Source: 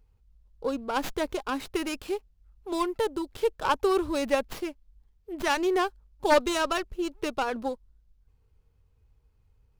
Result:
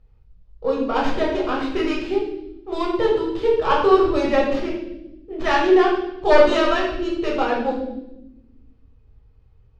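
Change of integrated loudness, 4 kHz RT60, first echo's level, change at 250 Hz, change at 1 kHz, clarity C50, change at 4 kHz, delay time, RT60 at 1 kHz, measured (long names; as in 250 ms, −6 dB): +8.5 dB, 0.85 s, no echo audible, +9.0 dB, +7.5 dB, 3.0 dB, +5.0 dB, no echo audible, 0.70 s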